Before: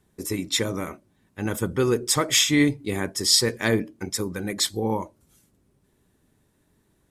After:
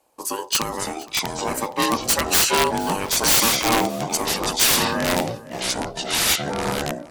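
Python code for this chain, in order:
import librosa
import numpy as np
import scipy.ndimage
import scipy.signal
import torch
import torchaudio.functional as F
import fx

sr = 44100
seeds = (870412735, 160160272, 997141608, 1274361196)

p1 = fx.high_shelf(x, sr, hz=2400.0, db=6.5)
p2 = fx.notch(p1, sr, hz=2700.0, q=7.9)
p3 = p2 * np.sin(2.0 * np.pi * 690.0 * np.arange(len(p2)) / sr)
p4 = (np.mod(10.0 ** (11.0 / 20.0) * p3 + 1.0, 2.0) - 1.0) / 10.0 ** (11.0 / 20.0)
p5 = fx.quant_float(p4, sr, bits=2)
p6 = p4 + F.gain(torch.from_numpy(p5), -11.5).numpy()
p7 = fx.echo_pitch(p6, sr, ms=479, semitones=-4, count=3, db_per_echo=-3.0)
y = p7 + fx.echo_single(p7, sr, ms=467, db=-21.0, dry=0)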